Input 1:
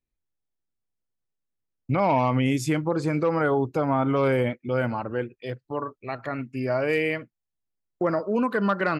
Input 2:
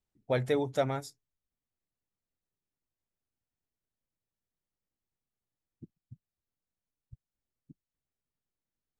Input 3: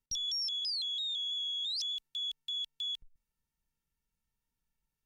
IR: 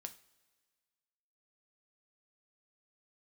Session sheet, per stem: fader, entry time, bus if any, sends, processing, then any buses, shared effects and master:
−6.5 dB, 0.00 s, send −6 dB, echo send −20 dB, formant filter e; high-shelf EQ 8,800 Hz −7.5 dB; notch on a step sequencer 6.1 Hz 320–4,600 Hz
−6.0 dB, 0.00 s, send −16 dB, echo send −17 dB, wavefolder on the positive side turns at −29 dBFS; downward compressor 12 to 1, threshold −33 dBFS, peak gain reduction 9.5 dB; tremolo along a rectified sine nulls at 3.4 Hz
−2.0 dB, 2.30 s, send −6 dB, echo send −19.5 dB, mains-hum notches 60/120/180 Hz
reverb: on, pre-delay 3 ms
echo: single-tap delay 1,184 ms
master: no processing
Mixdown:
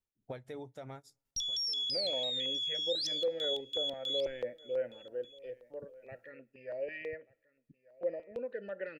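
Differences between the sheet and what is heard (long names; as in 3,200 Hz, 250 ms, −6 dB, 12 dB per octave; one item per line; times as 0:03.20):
stem 2: missing wavefolder on the positive side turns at −29 dBFS
stem 3: entry 2.30 s → 1.25 s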